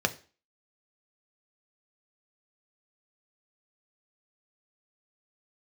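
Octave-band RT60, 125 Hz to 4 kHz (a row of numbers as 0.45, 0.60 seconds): 0.30, 0.40, 0.40, 0.40, 0.40, 0.35 seconds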